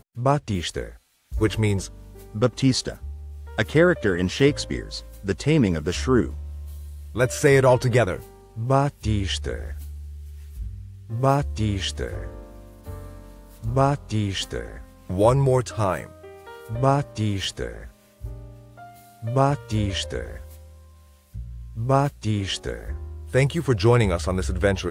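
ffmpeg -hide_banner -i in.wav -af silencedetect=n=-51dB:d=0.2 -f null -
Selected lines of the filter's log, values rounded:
silence_start: 0.98
silence_end: 1.31 | silence_duration: 0.33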